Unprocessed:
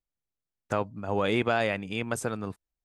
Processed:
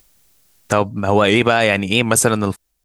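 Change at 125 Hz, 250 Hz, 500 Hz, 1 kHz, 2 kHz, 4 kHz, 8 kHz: +13.5 dB, +13.0 dB, +12.0 dB, +12.5 dB, +13.5 dB, +16.5 dB, +22.0 dB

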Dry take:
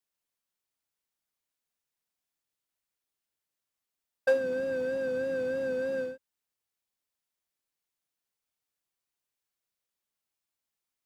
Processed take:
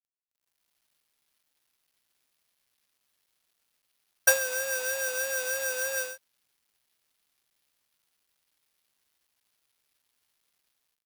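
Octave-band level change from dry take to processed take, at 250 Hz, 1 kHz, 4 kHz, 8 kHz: under -20 dB, +7.0 dB, +15.0 dB, no reading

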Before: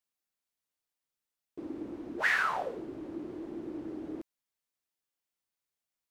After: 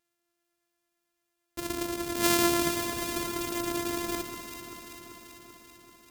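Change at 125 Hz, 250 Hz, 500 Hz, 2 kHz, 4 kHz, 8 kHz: +12.0 dB, +8.0 dB, +8.5 dB, -3.0 dB, +14.0 dB, +23.5 dB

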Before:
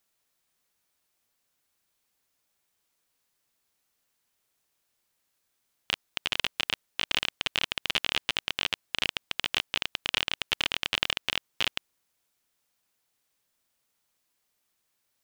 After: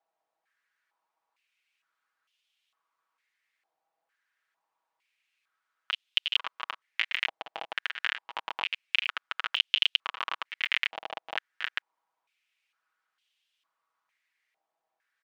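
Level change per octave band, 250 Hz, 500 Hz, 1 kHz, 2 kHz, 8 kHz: under -15 dB, -5.0 dB, +1.5 dB, +0.5 dB, under -15 dB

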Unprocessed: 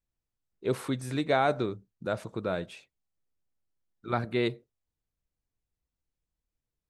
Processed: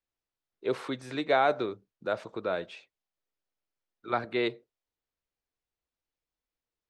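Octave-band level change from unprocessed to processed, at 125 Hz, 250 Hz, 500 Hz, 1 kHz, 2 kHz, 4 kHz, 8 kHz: -10.5 dB, -3.0 dB, +0.5 dB, +1.5 dB, +1.5 dB, +0.5 dB, no reading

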